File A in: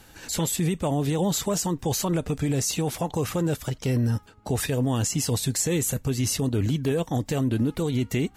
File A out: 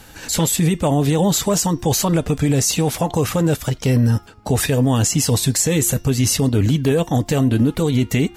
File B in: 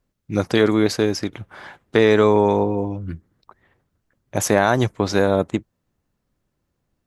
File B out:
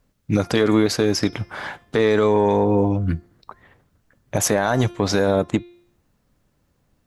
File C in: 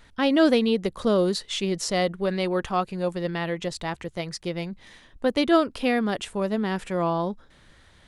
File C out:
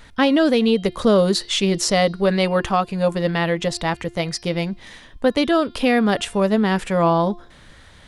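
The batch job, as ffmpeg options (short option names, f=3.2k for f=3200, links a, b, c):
-filter_complex "[0:a]bandreject=f=360:w=12,bandreject=f=349.6:t=h:w=4,bandreject=f=699.2:t=h:w=4,bandreject=f=1.0488k:t=h:w=4,bandreject=f=1.3984k:t=h:w=4,bandreject=f=1.748k:t=h:w=4,bandreject=f=2.0976k:t=h:w=4,bandreject=f=2.4472k:t=h:w=4,bandreject=f=2.7968k:t=h:w=4,bandreject=f=3.1464k:t=h:w=4,bandreject=f=3.496k:t=h:w=4,bandreject=f=3.8456k:t=h:w=4,bandreject=f=4.1952k:t=h:w=4,bandreject=f=4.5448k:t=h:w=4,bandreject=f=4.8944k:t=h:w=4,bandreject=f=5.244k:t=h:w=4,bandreject=f=5.5936k:t=h:w=4,bandreject=f=5.9432k:t=h:w=4,asplit=2[a][b];[b]acontrast=51,volume=-2dB[c];[a][c]amix=inputs=2:normalize=0,alimiter=limit=-7.5dB:level=0:latency=1:release=220"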